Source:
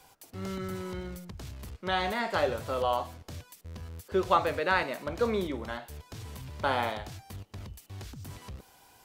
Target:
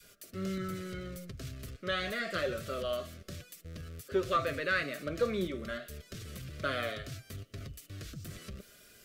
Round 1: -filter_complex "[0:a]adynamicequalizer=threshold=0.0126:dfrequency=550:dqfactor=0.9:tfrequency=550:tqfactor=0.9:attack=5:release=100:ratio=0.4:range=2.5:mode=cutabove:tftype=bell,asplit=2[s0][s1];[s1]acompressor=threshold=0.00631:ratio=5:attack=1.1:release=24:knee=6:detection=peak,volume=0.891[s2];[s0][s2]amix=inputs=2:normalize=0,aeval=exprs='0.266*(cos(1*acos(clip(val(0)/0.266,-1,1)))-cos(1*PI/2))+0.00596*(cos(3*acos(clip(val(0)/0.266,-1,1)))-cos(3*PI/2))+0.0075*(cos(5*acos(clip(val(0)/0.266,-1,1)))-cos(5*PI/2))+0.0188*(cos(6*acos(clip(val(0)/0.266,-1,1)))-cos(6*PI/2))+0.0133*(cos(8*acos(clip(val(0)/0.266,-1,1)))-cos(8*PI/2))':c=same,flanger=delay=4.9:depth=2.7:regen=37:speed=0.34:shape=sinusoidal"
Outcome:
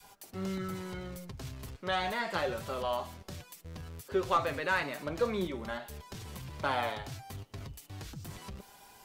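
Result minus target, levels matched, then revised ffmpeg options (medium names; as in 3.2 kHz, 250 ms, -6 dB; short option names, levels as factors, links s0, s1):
1 kHz band +4.0 dB
-filter_complex "[0:a]adynamicequalizer=threshold=0.0126:dfrequency=550:dqfactor=0.9:tfrequency=550:tqfactor=0.9:attack=5:release=100:ratio=0.4:range=2.5:mode=cutabove:tftype=bell,asuperstop=centerf=880:order=8:qfactor=1.9,asplit=2[s0][s1];[s1]acompressor=threshold=0.00631:ratio=5:attack=1.1:release=24:knee=6:detection=peak,volume=0.891[s2];[s0][s2]amix=inputs=2:normalize=0,aeval=exprs='0.266*(cos(1*acos(clip(val(0)/0.266,-1,1)))-cos(1*PI/2))+0.00596*(cos(3*acos(clip(val(0)/0.266,-1,1)))-cos(3*PI/2))+0.0075*(cos(5*acos(clip(val(0)/0.266,-1,1)))-cos(5*PI/2))+0.0188*(cos(6*acos(clip(val(0)/0.266,-1,1)))-cos(6*PI/2))+0.0133*(cos(8*acos(clip(val(0)/0.266,-1,1)))-cos(8*PI/2))':c=same,flanger=delay=4.9:depth=2.7:regen=37:speed=0.34:shape=sinusoidal"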